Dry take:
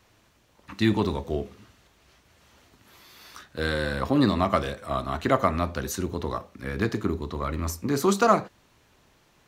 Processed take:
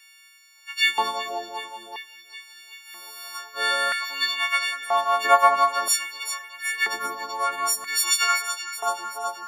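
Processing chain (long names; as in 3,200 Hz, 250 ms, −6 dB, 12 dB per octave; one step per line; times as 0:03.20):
every partial snapped to a pitch grid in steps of 4 semitones
delay that swaps between a low-pass and a high-pass 190 ms, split 1,500 Hz, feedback 80%, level −7.5 dB
auto-filter high-pass square 0.51 Hz 810–2,100 Hz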